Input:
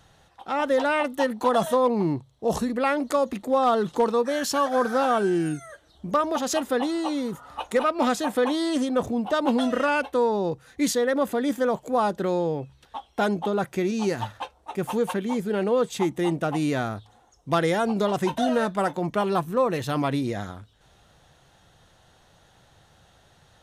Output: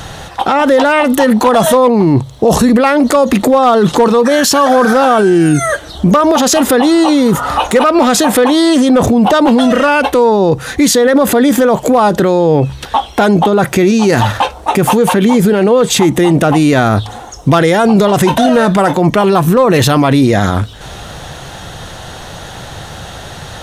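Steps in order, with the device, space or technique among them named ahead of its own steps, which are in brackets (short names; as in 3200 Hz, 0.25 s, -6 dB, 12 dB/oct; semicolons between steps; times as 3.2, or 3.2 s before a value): loud club master (compressor 1.5:1, threshold -30 dBFS, peak gain reduction 5 dB; hard clip -19 dBFS, distortion -28 dB; maximiser +30.5 dB); gain -1 dB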